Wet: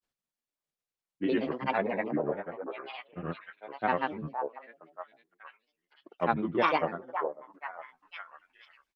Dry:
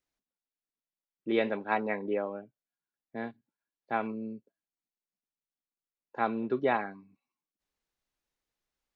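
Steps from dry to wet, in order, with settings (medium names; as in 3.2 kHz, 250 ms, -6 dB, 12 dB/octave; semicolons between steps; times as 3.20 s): pitch bend over the whole clip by -2.5 st ending unshifted; repeats whose band climbs or falls 492 ms, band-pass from 700 Hz, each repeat 0.7 oct, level -4 dB; granulator, pitch spread up and down by 7 st; trim +3 dB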